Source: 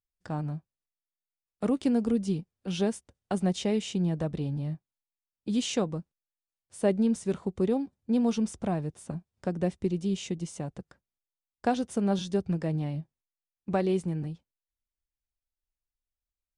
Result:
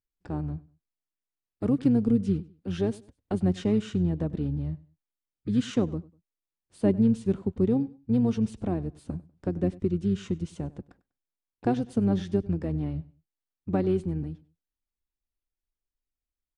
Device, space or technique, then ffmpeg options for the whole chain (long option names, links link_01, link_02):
octave pedal: -filter_complex "[0:a]asplit=2[link_01][link_02];[link_02]asetrate=22050,aresample=44100,atempo=2,volume=-6dB[link_03];[link_01][link_03]amix=inputs=2:normalize=0,firequalizer=gain_entry='entry(150,0);entry(290,4);entry(580,-4);entry(6400,-10)':delay=0.05:min_phase=1,aecho=1:1:98|196:0.0891|0.0241"